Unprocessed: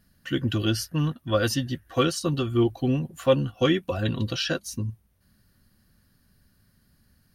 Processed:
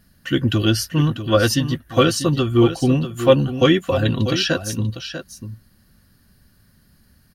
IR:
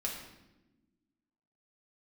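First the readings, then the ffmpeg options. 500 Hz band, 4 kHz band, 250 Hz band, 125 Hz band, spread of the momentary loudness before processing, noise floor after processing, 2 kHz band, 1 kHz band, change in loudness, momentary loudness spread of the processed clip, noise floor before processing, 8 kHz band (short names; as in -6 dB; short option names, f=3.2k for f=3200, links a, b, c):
+7.5 dB, +7.5 dB, +7.5 dB, +7.5 dB, 6 LU, -57 dBFS, +7.5 dB, +7.5 dB, +7.5 dB, 13 LU, -65 dBFS, +7.5 dB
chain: -af "aecho=1:1:643:0.299,volume=7dB"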